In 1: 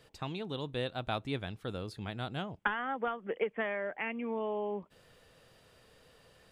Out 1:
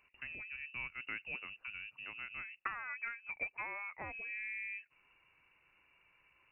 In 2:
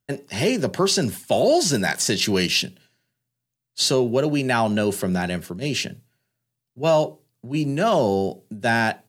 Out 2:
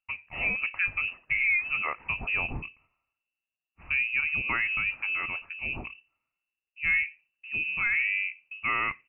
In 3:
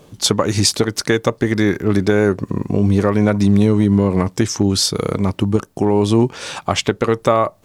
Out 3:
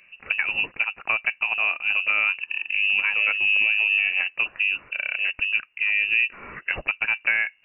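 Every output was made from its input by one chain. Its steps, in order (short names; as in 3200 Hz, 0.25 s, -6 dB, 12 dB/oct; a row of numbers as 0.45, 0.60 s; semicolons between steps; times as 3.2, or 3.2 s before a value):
inverted band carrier 2800 Hz; gain -8 dB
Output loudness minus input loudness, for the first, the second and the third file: -5.5, -6.0, -4.5 LU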